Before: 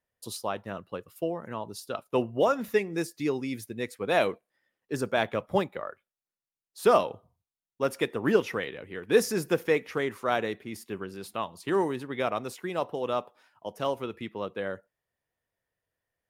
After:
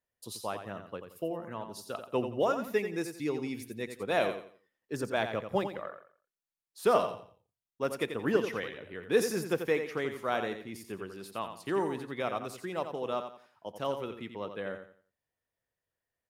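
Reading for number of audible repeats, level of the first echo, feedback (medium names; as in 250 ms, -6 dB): 3, -8.5 dB, 30%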